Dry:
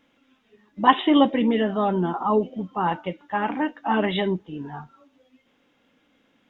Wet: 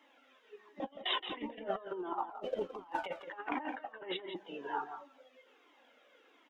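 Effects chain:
high-pass filter 370 Hz 24 dB per octave
high-shelf EQ 2,600 Hz −6.5 dB
0:02.29–0:03.06: leveller curve on the samples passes 1
compressor whose output falls as the input rises −34 dBFS, ratio −0.5
0:00.80–0:01.32: reverse
0:03.75–0:04.36: high-frequency loss of the air 260 metres
single-tap delay 170 ms −10 dB
flanger whose copies keep moving one way falling 1.4 Hz
level −1 dB

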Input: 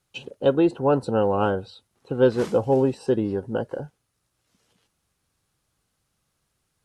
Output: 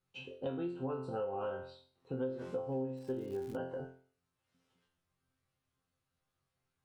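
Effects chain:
bass and treble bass +1 dB, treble −8 dB
resonators tuned to a chord F2 fifth, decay 0.45 s
0:02.95–0:03.55: surface crackle 210 per second −47 dBFS
downward compressor 8 to 1, threshold −38 dBFS, peak gain reduction 16.5 dB
level +3.5 dB

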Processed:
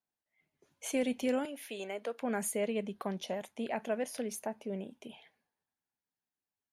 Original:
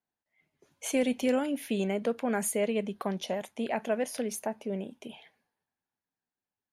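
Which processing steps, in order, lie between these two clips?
0:01.45–0:02.21: high-pass filter 490 Hz 12 dB per octave
level −4.5 dB

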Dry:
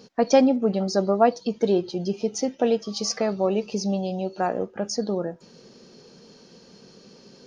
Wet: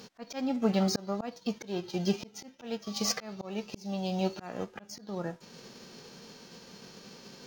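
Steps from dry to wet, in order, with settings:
spectral envelope flattened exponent 0.6
volume swells 555 ms
linearly interpolated sample-rate reduction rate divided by 2×

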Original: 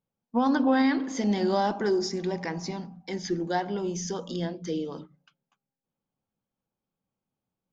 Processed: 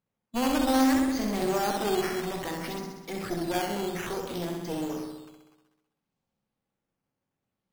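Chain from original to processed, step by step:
asymmetric clip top −37 dBFS, bottom −17.5 dBFS
flutter between parallel walls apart 11.1 metres, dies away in 1.1 s
sample-and-hold swept by an LFO 8×, swing 100% 0.6 Hz

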